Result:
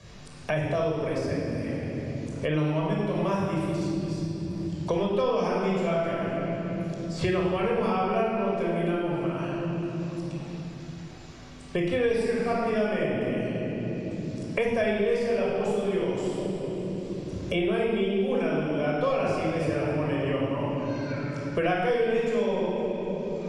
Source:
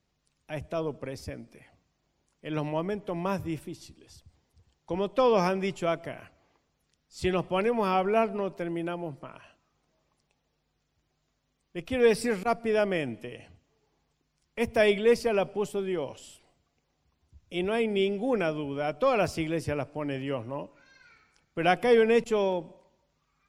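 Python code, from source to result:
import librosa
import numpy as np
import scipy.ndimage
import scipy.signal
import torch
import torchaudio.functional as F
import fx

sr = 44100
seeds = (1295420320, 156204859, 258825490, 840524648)

y = scipy.signal.sosfilt(scipy.signal.butter(4, 9800.0, 'lowpass', fs=sr, output='sos'), x)
y = fx.echo_feedback(y, sr, ms=252, feedback_pct=33, wet_db=-19.0)
y = fx.room_shoebox(y, sr, seeds[0], volume_m3=2400.0, walls='mixed', distance_m=5.6)
y = fx.band_squash(y, sr, depth_pct=100)
y = F.gain(torch.from_numpy(y), -8.5).numpy()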